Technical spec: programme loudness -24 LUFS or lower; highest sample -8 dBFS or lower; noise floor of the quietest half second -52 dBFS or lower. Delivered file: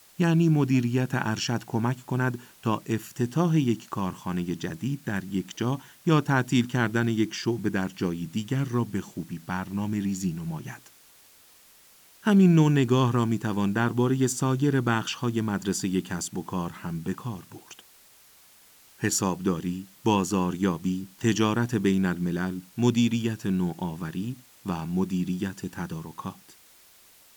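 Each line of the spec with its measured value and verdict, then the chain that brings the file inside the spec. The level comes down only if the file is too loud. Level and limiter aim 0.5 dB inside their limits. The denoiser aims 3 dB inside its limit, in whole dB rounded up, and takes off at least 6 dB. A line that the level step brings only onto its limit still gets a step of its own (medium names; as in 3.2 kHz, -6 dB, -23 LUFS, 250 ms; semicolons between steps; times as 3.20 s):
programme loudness -26.5 LUFS: pass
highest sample -8.5 dBFS: pass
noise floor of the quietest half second -55 dBFS: pass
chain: none needed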